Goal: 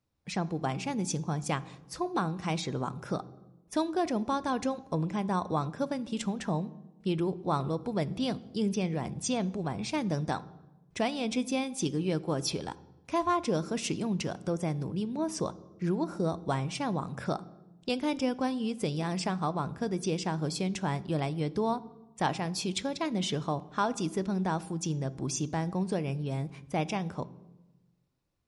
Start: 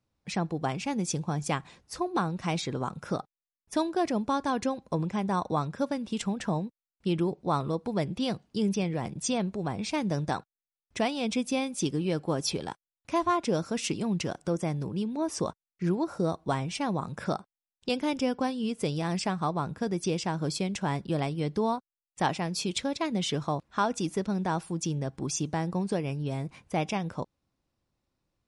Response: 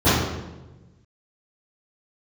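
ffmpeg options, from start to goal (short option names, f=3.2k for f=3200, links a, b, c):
-filter_complex "[0:a]asplit=2[a][b];[1:a]atrim=start_sample=2205,highshelf=f=5.4k:g=11.5[c];[b][c]afir=irnorm=-1:irlink=0,volume=-41dB[d];[a][d]amix=inputs=2:normalize=0,volume=-2dB"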